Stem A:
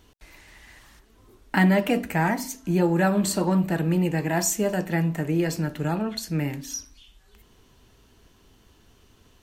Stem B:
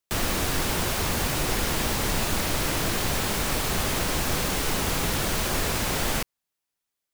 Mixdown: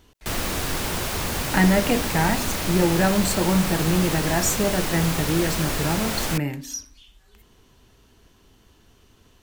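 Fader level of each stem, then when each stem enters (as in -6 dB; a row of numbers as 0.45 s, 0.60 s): +1.0 dB, -0.5 dB; 0.00 s, 0.15 s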